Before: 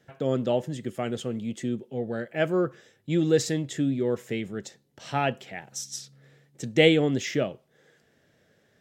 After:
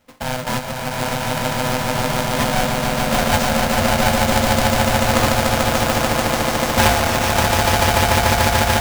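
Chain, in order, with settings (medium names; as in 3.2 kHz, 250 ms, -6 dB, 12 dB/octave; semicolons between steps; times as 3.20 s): square wave that keeps the level; echo with a slow build-up 146 ms, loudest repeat 8, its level -3.5 dB; polarity switched at an audio rate 380 Hz; trim -2 dB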